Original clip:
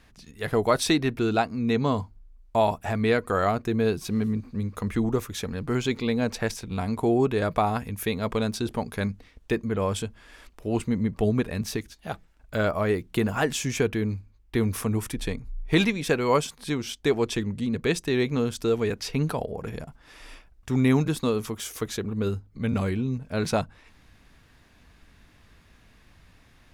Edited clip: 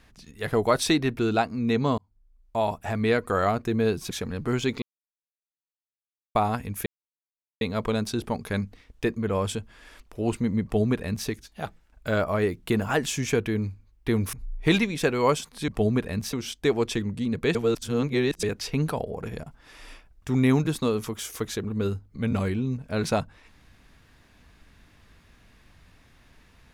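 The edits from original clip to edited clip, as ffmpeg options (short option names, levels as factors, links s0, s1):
-filter_complex "[0:a]asplit=11[s0][s1][s2][s3][s4][s5][s6][s7][s8][s9][s10];[s0]atrim=end=1.98,asetpts=PTS-STARTPTS,afade=t=out:st=1.976:d=0.004:c=hsin[s11];[s1]atrim=start=1.98:end=4.112,asetpts=PTS-STARTPTS,afade=t=in:d=1.39:c=qsin[s12];[s2]atrim=start=5.328:end=6.04,asetpts=PTS-STARTPTS,afade=t=out:st=0.708:d=0.004:c=hsin[s13];[s3]atrim=start=6.04:end=7.57,asetpts=PTS-STARTPTS,volume=0[s14];[s4]atrim=start=7.57:end=8.08,asetpts=PTS-STARTPTS,afade=t=in:d=0.004:c=hsin,afade=t=out:st=0.506:d=0.004:c=hsin,apad=pad_dur=0.75[s15];[s5]atrim=start=8.08:end=14.802,asetpts=PTS-STARTPTS,afade=t=in:d=0.004:c=hsin[s16];[s6]atrim=start=15.388:end=16.742[s17];[s7]atrim=start=11.098:end=11.752[s18];[s8]atrim=start=16.738:end=17.962[s19];[s9]atrim=start=17.958:end=18.842,asetpts=PTS-STARTPTS,areverse[s20];[s10]atrim=start=18.838[s21];[s11][s12]concat=n=2:v=0:a=1[s22];[s13][s14][s15][s16]concat=n=4:v=0:a=1[s23];[s22][s23]acrossfade=d=0.004:c1=hsin:c2=hsin[s24];[s24][s17]acrossfade=d=0.004:c1=hsin:c2=hsin[s25];[s25][s18]acrossfade=d=0.004:c1=hsin:c2=hsin[s26];[s26][s19]acrossfade=d=0.004:c1=hsin:c2=hsin[s27];[s27][s20]acrossfade=d=0.004:c1=hsin:c2=hsin[s28];[s28][s21]acrossfade=d=0.004:c1=hsin:c2=hsin"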